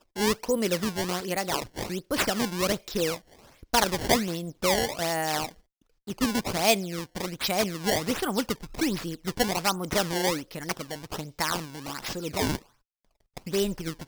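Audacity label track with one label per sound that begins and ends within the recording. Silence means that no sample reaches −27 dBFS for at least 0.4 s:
3.740000	5.460000	sound
6.080000	12.560000	sound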